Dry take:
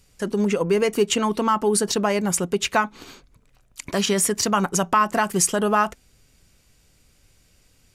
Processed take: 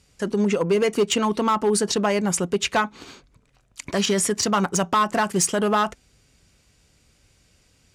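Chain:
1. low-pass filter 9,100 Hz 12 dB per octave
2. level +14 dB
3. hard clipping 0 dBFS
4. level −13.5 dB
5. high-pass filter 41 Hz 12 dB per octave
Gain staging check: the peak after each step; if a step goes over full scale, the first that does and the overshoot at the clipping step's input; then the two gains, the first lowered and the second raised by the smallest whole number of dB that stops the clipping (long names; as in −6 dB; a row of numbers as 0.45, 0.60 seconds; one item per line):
−6.5, +7.5, 0.0, −13.5, −12.0 dBFS
step 2, 7.5 dB
step 2 +6 dB, step 4 −5.5 dB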